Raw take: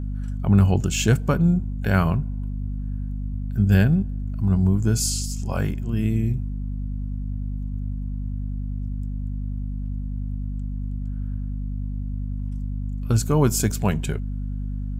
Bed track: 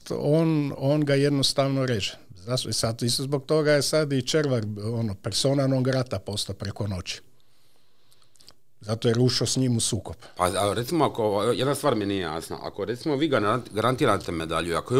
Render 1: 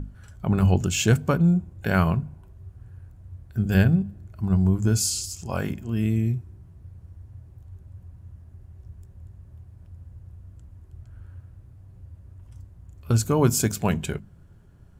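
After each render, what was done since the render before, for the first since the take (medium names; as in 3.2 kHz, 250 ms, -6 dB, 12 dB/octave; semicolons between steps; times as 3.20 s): hum notches 50/100/150/200/250 Hz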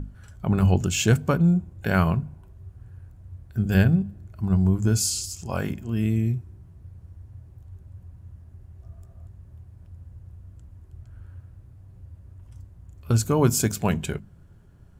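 8.82–9.27 s: small resonant body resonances 670/1200 Hz, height 15 dB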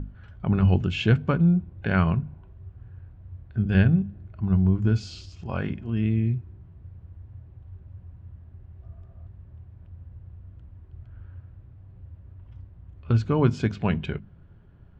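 low-pass 3.5 kHz 24 dB/octave; dynamic bell 690 Hz, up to -4 dB, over -38 dBFS, Q 0.89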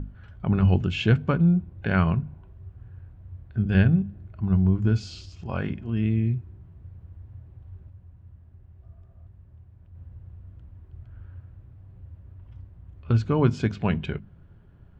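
7.90–9.95 s: gain -4.5 dB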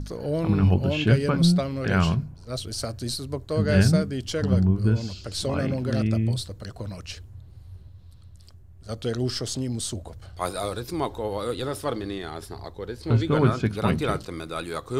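add bed track -5.5 dB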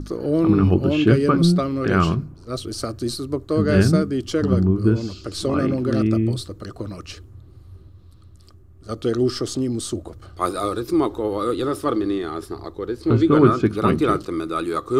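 small resonant body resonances 330/1200 Hz, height 13 dB, ringing for 25 ms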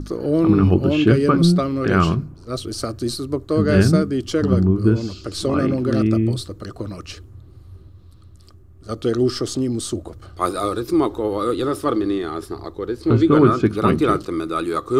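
trim +1.5 dB; peak limiter -3 dBFS, peak gain reduction 2 dB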